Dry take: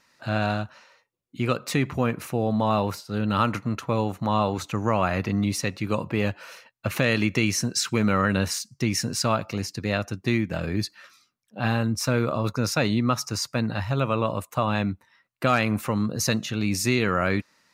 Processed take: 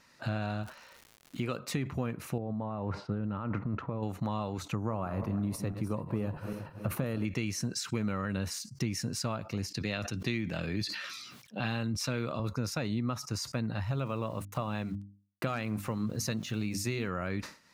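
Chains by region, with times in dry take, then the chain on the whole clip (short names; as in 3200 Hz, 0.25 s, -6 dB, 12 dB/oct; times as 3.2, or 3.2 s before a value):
0.62–1.57 low shelf 140 Hz -9 dB + crackle 220/s -42 dBFS
2.38–4.03 LPF 1500 Hz + negative-ratio compressor -29 dBFS
4.75–7.25 regenerating reverse delay 0.162 s, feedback 53%, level -12 dB + band shelf 3600 Hz -10.5 dB 2.4 oct
9.7–12.4 HPF 98 Hz + bell 3400 Hz +8.5 dB 1.7 oct + sustainer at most 59 dB/s
13.91–17.08 sample gate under -44.5 dBFS + notches 50/100/150/200/250/300 Hz
whole clip: compressor 3:1, threshold -37 dBFS; low shelf 300 Hz +5.5 dB; sustainer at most 150 dB/s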